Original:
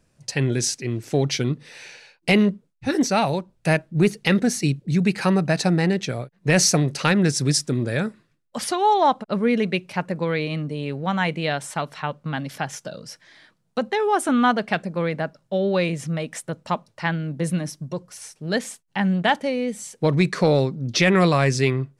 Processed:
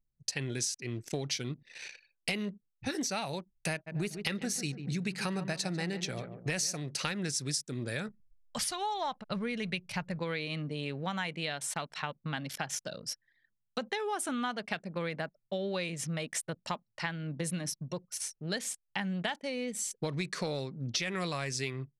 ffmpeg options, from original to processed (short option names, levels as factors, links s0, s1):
-filter_complex "[0:a]asplit=3[s0][s1][s2];[s0]afade=t=out:st=3.86:d=0.02[s3];[s1]asplit=2[s4][s5];[s5]adelay=144,lowpass=f=1600:p=1,volume=0.266,asplit=2[s6][s7];[s7]adelay=144,lowpass=f=1600:p=1,volume=0.51,asplit=2[s8][s9];[s9]adelay=144,lowpass=f=1600:p=1,volume=0.51,asplit=2[s10][s11];[s11]adelay=144,lowpass=f=1600:p=1,volume=0.51,asplit=2[s12][s13];[s13]adelay=144,lowpass=f=1600:p=1,volume=0.51[s14];[s4][s6][s8][s10][s12][s14]amix=inputs=6:normalize=0,afade=t=in:st=3.86:d=0.02,afade=t=out:st=6.75:d=0.02[s15];[s2]afade=t=in:st=6.75:d=0.02[s16];[s3][s15][s16]amix=inputs=3:normalize=0,asplit=3[s17][s18][s19];[s17]afade=t=out:st=8.07:d=0.02[s20];[s18]asubboost=boost=9.5:cutoff=94,afade=t=in:st=8.07:d=0.02,afade=t=out:st=10.18:d=0.02[s21];[s19]afade=t=in:st=10.18:d=0.02[s22];[s20][s21][s22]amix=inputs=3:normalize=0,anlmdn=0.398,highshelf=f=2000:g=11.5,acompressor=threshold=0.0631:ratio=6,volume=0.422"